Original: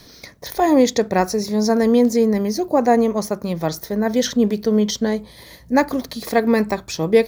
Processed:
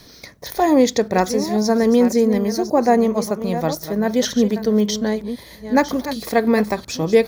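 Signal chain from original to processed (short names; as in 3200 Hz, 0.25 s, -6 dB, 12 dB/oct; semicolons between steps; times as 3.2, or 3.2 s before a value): reverse delay 0.54 s, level -11 dB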